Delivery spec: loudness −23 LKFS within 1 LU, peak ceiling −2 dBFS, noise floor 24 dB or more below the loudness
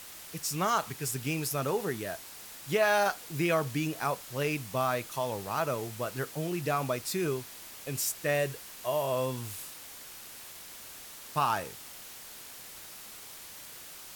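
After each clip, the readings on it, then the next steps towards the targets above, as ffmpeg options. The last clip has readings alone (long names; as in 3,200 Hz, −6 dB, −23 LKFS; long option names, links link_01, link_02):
background noise floor −47 dBFS; target noise floor −56 dBFS; integrated loudness −31.5 LKFS; sample peak −13.5 dBFS; target loudness −23.0 LKFS
→ -af "afftdn=noise_reduction=9:noise_floor=-47"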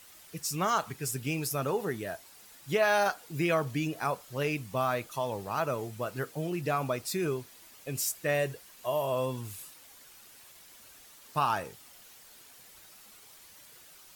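background noise floor −54 dBFS; target noise floor −56 dBFS
→ -af "afftdn=noise_reduction=6:noise_floor=-54"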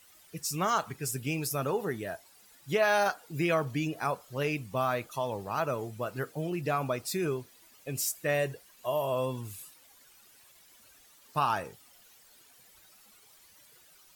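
background noise floor −59 dBFS; integrated loudness −31.5 LKFS; sample peak −14.0 dBFS; target loudness −23.0 LKFS
→ -af "volume=8.5dB"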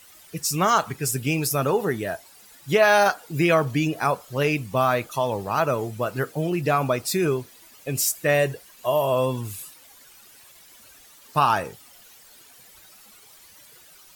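integrated loudness −23.0 LKFS; sample peak −5.5 dBFS; background noise floor −51 dBFS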